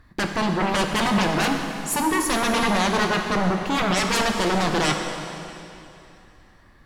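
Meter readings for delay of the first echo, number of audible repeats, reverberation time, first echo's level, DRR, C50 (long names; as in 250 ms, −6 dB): no echo audible, no echo audible, 2.9 s, no echo audible, 3.0 dB, 4.5 dB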